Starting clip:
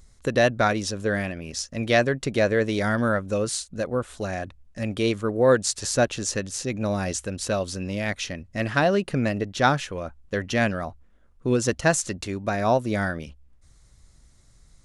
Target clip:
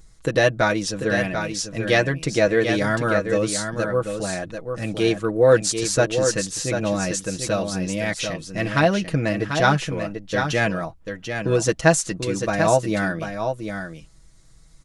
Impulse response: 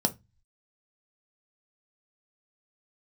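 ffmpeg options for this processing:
-af "aecho=1:1:6.2:0.69,aecho=1:1:741:0.447,volume=1.12"

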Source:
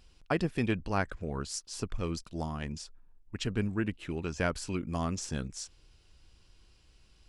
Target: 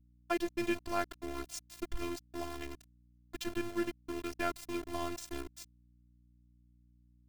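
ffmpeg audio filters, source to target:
-af "aeval=exprs='val(0)*gte(abs(val(0)),0.02)':c=same,afftfilt=real='hypot(re,im)*cos(PI*b)':imag='0':win_size=512:overlap=0.75,aeval=exprs='val(0)+0.000631*(sin(2*PI*60*n/s)+sin(2*PI*2*60*n/s)/2+sin(2*PI*3*60*n/s)/3+sin(2*PI*4*60*n/s)/4+sin(2*PI*5*60*n/s)/5)':c=same"

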